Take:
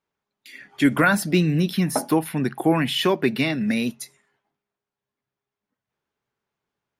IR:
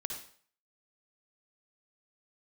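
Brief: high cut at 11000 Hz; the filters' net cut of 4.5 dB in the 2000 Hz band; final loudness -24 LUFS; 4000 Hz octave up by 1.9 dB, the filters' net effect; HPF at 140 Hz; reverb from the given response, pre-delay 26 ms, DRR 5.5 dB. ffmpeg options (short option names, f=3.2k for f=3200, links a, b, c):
-filter_complex "[0:a]highpass=140,lowpass=11k,equalizer=f=2k:t=o:g=-8,equalizer=f=4k:t=o:g=6,asplit=2[a][b];[1:a]atrim=start_sample=2205,adelay=26[c];[b][c]afir=irnorm=-1:irlink=0,volume=-6dB[d];[a][d]amix=inputs=2:normalize=0,volume=-2.5dB"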